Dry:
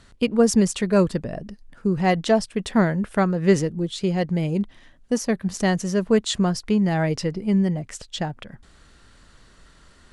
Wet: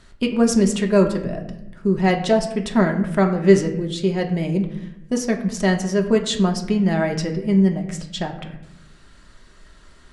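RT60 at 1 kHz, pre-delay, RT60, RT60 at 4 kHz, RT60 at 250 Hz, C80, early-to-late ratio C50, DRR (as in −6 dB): 0.80 s, 3 ms, 0.85 s, 0.55 s, 1.3 s, 12.0 dB, 9.5 dB, 2.5 dB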